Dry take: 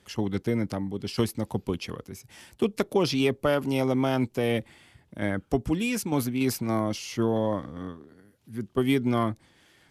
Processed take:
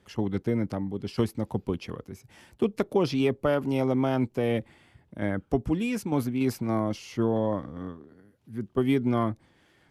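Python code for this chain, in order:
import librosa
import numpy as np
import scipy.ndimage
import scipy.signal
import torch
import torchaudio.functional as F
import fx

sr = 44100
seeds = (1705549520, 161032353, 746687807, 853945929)

y = fx.high_shelf(x, sr, hz=2500.0, db=-9.5)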